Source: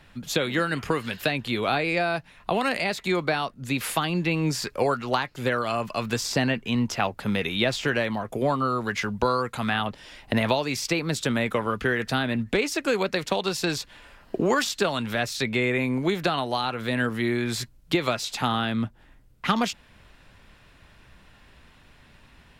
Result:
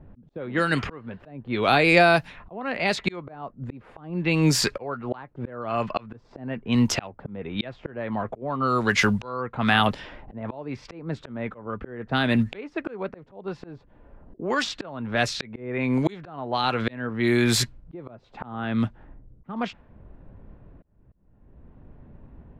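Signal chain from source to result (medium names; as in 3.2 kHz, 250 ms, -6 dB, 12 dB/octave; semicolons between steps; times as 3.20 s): slow attack 695 ms; level-controlled noise filter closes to 400 Hz, open at -25.5 dBFS; trim +8.5 dB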